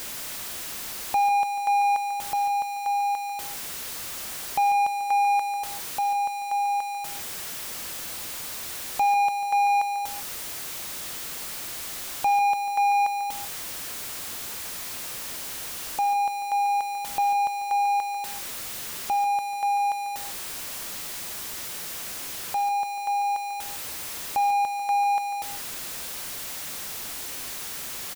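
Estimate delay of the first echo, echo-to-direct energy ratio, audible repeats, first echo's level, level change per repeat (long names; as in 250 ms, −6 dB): 144 ms, −11.0 dB, 1, −11.5 dB, repeats not evenly spaced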